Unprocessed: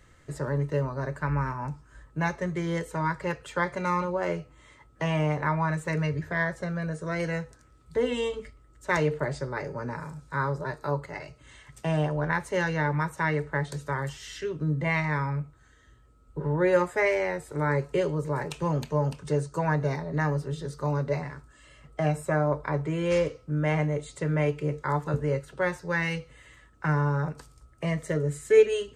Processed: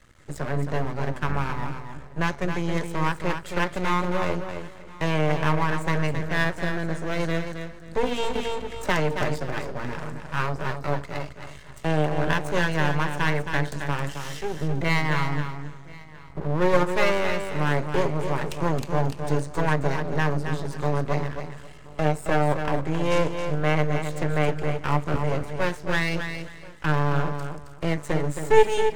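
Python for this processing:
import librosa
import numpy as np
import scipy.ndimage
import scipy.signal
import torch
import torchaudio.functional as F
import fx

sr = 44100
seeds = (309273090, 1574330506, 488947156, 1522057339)

p1 = x + 10.0 ** (-22.0 / 20.0) * np.pad(x, (int(1031 * sr / 1000.0), 0))[:len(x)]
p2 = np.maximum(p1, 0.0)
p3 = p2 + fx.echo_feedback(p2, sr, ms=269, feedback_pct=21, wet_db=-7.5, dry=0)
p4 = fx.band_squash(p3, sr, depth_pct=70, at=(8.35, 9.22))
y = F.gain(torch.from_numpy(p4), 6.0).numpy()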